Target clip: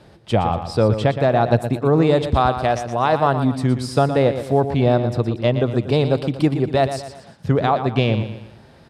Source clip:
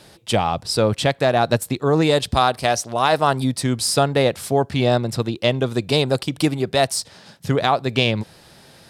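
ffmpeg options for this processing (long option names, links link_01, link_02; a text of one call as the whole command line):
ffmpeg -i in.wav -af "lowpass=frequency=1200:poles=1,equalizer=frequency=67:width_type=o:width=1.5:gain=4.5,aecho=1:1:118|236|354|472:0.316|0.133|0.0558|0.0234,volume=1.5dB" out.wav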